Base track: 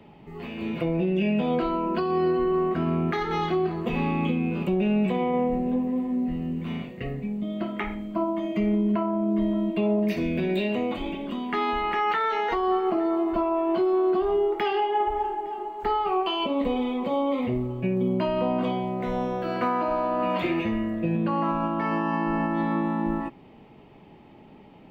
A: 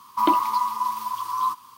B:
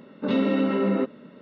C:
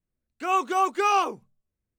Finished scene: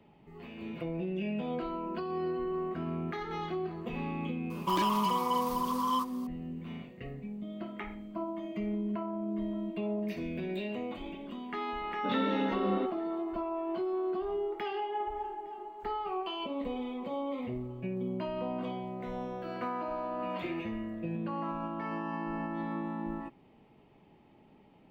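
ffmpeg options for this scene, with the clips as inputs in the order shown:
-filter_complex "[0:a]volume=0.299[s0];[1:a]asoftclip=type=hard:threshold=0.0668[s1];[2:a]equalizer=f=3500:w=6.2:g=12.5[s2];[s1]atrim=end=1.77,asetpts=PTS-STARTPTS,volume=0.631,afade=t=in:d=0.004:c=hsin,afade=t=out:st=1.766:d=0.004:c=hsin,adelay=4500[s3];[s2]atrim=end=1.41,asetpts=PTS-STARTPTS,volume=0.355,afade=t=in:d=0.004:c=hsin,afade=t=out:st=1.406:d=0.004:c=hsin,adelay=11810[s4];[s0][s3][s4]amix=inputs=3:normalize=0"

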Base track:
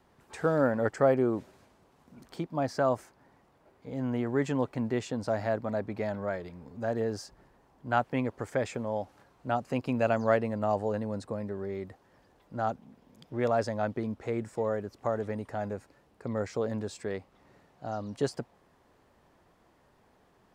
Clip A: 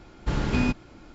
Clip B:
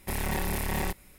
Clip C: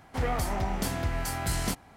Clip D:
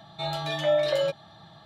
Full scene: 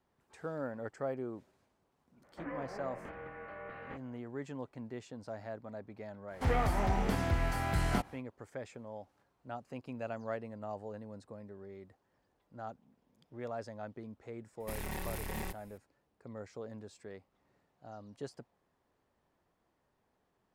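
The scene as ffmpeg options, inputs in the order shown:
-filter_complex "[3:a]asplit=2[s0][s1];[0:a]volume=0.211[s2];[s0]highpass=f=340:t=q:w=0.5412,highpass=f=340:t=q:w=1.307,lowpass=f=2500:t=q:w=0.5176,lowpass=f=2500:t=q:w=0.7071,lowpass=f=2500:t=q:w=1.932,afreqshift=-200[s3];[s1]acrossover=split=3000[s4][s5];[s5]acompressor=threshold=0.00398:ratio=4:attack=1:release=60[s6];[s4][s6]amix=inputs=2:normalize=0[s7];[s3]atrim=end=1.96,asetpts=PTS-STARTPTS,volume=0.316,afade=t=in:d=0.004:c=hsin,afade=t=out:st=1.956:d=0.004:c=hsin,adelay=2230[s8];[s7]atrim=end=1.96,asetpts=PTS-STARTPTS,volume=0.891,afade=t=in:d=0.1,afade=t=out:st=1.86:d=0.1,adelay=6270[s9];[2:a]atrim=end=1.18,asetpts=PTS-STARTPTS,volume=0.316,afade=t=in:d=0.004:c=hsin,afade=t=out:st=1.176:d=0.004:c=hsin,adelay=643860S[s10];[s2][s8][s9][s10]amix=inputs=4:normalize=0"

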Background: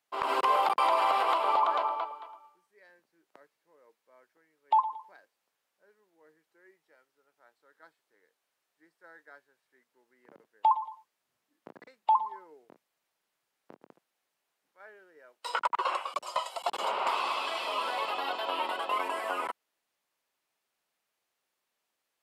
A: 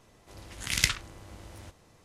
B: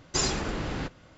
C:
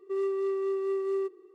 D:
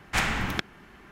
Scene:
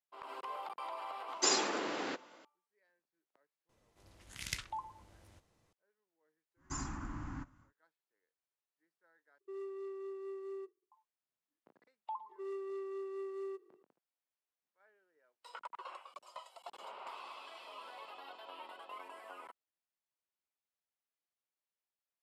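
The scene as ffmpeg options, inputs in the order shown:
-filter_complex "[2:a]asplit=2[s0][s1];[3:a]asplit=2[s2][s3];[0:a]volume=0.126[s4];[s0]highpass=f=290:w=0.5412,highpass=f=290:w=1.3066[s5];[s1]firequalizer=gain_entry='entry(120,0);entry(180,-7);entry(280,3);entry(430,-23);entry(1000,2);entry(2400,-13);entry(3800,-21);entry(6800,-5);entry(11000,-17)':delay=0.05:min_phase=1[s6];[s2]agate=range=0.0224:threshold=0.00891:ratio=3:release=100:detection=peak[s7];[s3]lowshelf=f=250:g=-8.5[s8];[s4]asplit=2[s9][s10];[s9]atrim=end=9.384[s11];[s7]atrim=end=1.54,asetpts=PTS-STARTPTS,volume=0.188[s12];[s10]atrim=start=10.916[s13];[s5]atrim=end=1.17,asetpts=PTS-STARTPTS,volume=0.75,afade=t=in:d=0.004:c=hsin,afade=t=out:st=1.166:d=0.004:c=hsin,adelay=1280[s14];[1:a]atrim=end=2.04,asetpts=PTS-STARTPTS,volume=0.178,afade=t=in:d=0.004:c=hsin,afade=t=out:st=2.036:d=0.004:c=hsin,adelay=162729S[s15];[s6]atrim=end=1.17,asetpts=PTS-STARTPTS,volume=0.355,afade=t=in:d=0.1,afade=t=out:st=1.07:d=0.1,adelay=6560[s16];[s8]atrim=end=1.54,asetpts=PTS-STARTPTS,volume=0.316,afade=t=in:d=0.004:c=hsin,afade=t=out:st=1.536:d=0.004:c=hsin,adelay=12290[s17];[s11][s12]acrossfade=d=0.004:c1=hsin:c2=hsin[s18];[s18][s13]acrossfade=d=0.004:c1=hsin:c2=hsin[s19];[s19][s14][s15][s16][s17]amix=inputs=5:normalize=0"

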